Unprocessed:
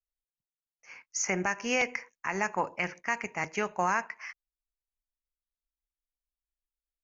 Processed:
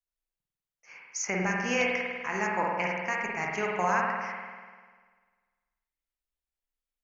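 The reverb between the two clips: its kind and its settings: spring tank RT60 1.6 s, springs 49 ms, chirp 50 ms, DRR -2 dB; gain -2 dB

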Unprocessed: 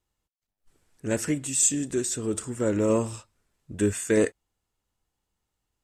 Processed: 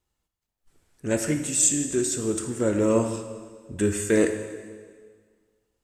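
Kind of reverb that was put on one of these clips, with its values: plate-style reverb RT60 1.7 s, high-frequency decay 0.9×, DRR 6 dB; gain +1 dB

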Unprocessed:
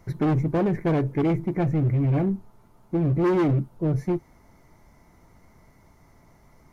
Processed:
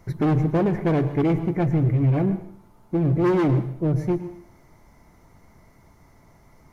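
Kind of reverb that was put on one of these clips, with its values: plate-style reverb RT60 0.58 s, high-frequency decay 1×, pre-delay 95 ms, DRR 11.5 dB; gain +1.5 dB

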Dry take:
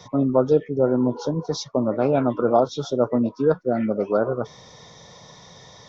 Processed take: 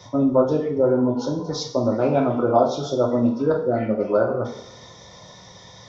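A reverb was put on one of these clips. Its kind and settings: two-slope reverb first 0.49 s, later 1.7 s, from -18 dB, DRR 0.5 dB; gain -1.5 dB

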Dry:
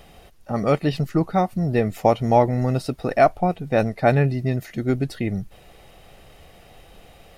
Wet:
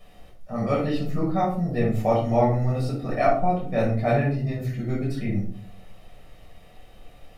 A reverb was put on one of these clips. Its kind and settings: shoebox room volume 530 m³, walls furnished, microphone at 6 m; gain -13.5 dB

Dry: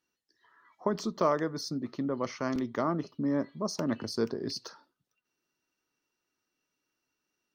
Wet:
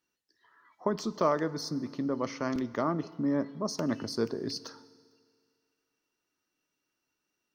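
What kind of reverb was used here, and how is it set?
FDN reverb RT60 2.1 s, low-frequency decay 0.85×, high-frequency decay 0.95×, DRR 16.5 dB

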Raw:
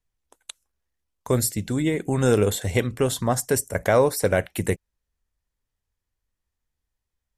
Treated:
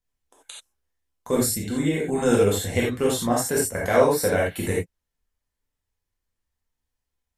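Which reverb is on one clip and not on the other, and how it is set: non-linear reverb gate 0.11 s flat, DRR -4.5 dB; gain -5 dB

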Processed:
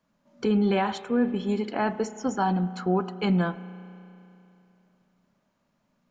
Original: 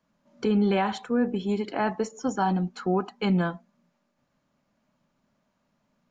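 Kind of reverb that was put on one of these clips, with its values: spring tank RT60 3 s, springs 33 ms, chirp 80 ms, DRR 15 dB

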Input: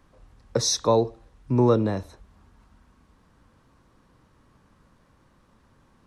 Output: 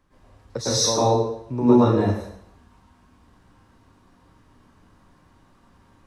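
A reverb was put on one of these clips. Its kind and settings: plate-style reverb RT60 0.72 s, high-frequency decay 0.9×, pre-delay 95 ms, DRR -10 dB; gain -6.5 dB

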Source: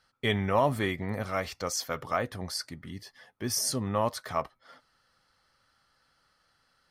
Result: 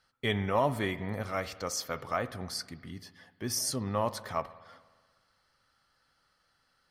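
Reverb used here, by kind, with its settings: spring tank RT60 1.5 s, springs 59 ms, chirp 45 ms, DRR 15 dB; gain -2.5 dB

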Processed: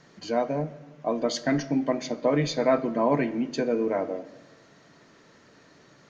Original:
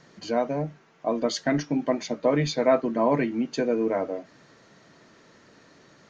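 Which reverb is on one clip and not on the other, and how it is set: shoebox room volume 790 m³, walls mixed, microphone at 0.33 m; gain -1 dB

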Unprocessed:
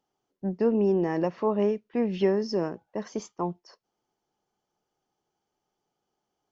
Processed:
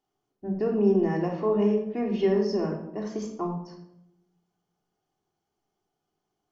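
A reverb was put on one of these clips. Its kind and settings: shoebox room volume 2000 m³, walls furnished, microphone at 3.3 m; gain -4 dB

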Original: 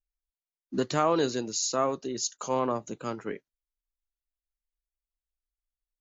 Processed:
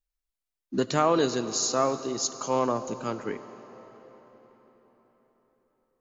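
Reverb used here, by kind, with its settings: digital reverb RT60 4.7 s, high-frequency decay 0.8×, pre-delay 30 ms, DRR 12 dB; gain +2 dB

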